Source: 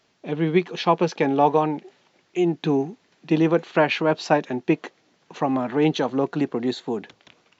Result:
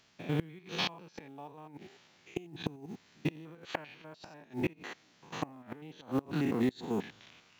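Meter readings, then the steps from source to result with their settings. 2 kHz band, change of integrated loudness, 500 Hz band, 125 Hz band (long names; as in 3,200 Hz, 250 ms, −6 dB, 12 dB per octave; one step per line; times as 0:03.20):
−13.0 dB, −14.5 dB, −18.5 dB, −11.0 dB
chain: spectrum averaged block by block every 100 ms
parametric band 460 Hz −8 dB 2.1 octaves
floating-point word with a short mantissa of 4 bits
gate with flip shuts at −22 dBFS, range −25 dB
level +2.5 dB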